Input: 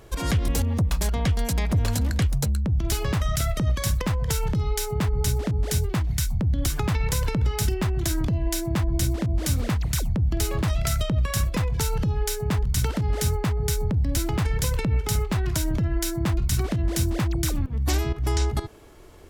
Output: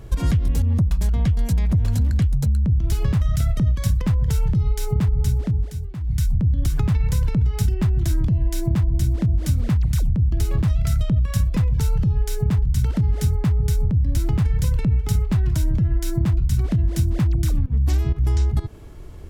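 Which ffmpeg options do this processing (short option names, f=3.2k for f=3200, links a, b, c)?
-filter_complex "[0:a]asplit=3[a][b][c];[a]atrim=end=5.72,asetpts=PTS-STARTPTS,afade=t=out:st=5.3:d=0.42:silence=0.141254[d];[b]atrim=start=5.72:end=6,asetpts=PTS-STARTPTS,volume=-17dB[e];[c]atrim=start=6,asetpts=PTS-STARTPTS,afade=t=in:d=0.42:silence=0.141254[f];[d][e][f]concat=n=3:v=0:a=1,bass=f=250:g=13,treble=f=4k:g=-1,acompressor=threshold=-16dB:ratio=6"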